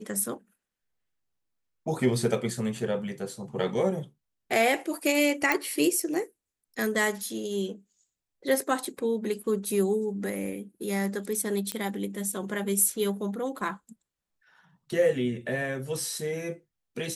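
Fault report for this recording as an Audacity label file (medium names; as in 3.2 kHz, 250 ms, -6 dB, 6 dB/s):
5.520000	5.520000	pop -9 dBFS
8.850000	8.850000	dropout 3.2 ms
11.720000	11.720000	pop -14 dBFS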